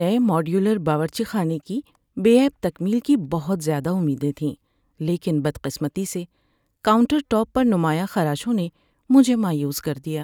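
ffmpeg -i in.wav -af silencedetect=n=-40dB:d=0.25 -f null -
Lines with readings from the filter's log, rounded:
silence_start: 1.81
silence_end: 2.17 | silence_duration: 0.36
silence_start: 4.54
silence_end: 5.00 | silence_duration: 0.46
silence_start: 6.25
silence_end: 6.85 | silence_duration: 0.60
silence_start: 8.69
silence_end: 9.10 | silence_duration: 0.41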